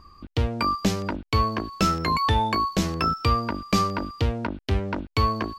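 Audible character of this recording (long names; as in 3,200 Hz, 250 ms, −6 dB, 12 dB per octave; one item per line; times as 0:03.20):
background noise floor −76 dBFS
spectral slope −4.5 dB per octave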